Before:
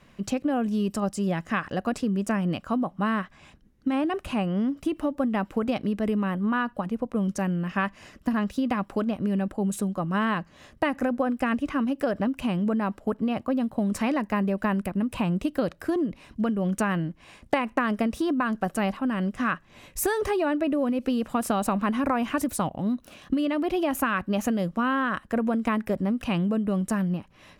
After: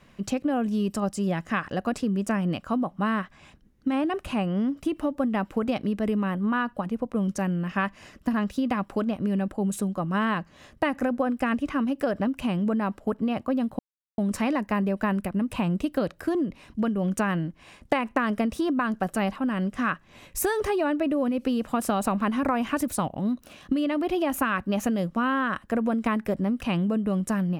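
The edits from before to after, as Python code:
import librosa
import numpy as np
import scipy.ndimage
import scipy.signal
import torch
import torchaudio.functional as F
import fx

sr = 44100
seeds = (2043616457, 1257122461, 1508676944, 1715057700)

y = fx.edit(x, sr, fx.insert_silence(at_s=13.79, length_s=0.39), tone=tone)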